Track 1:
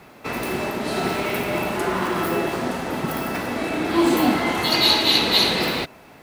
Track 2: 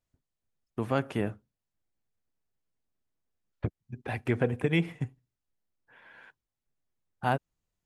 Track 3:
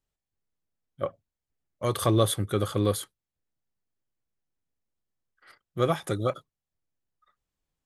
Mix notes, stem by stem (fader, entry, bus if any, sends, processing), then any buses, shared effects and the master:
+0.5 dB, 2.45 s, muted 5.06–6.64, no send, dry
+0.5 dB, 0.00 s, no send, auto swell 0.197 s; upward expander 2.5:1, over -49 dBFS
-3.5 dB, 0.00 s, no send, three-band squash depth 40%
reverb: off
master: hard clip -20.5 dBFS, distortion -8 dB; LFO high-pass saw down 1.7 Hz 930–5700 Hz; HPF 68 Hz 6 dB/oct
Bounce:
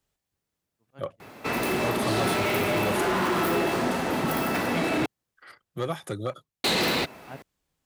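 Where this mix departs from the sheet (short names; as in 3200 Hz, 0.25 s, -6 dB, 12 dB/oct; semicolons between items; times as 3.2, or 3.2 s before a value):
stem 1: entry 2.45 s -> 1.20 s; master: missing LFO high-pass saw down 1.7 Hz 930–5700 Hz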